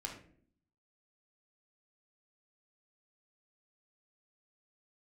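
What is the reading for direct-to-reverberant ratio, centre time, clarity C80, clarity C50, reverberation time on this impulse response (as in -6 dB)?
0.0 dB, 25 ms, 10.5 dB, 6.0 dB, 0.55 s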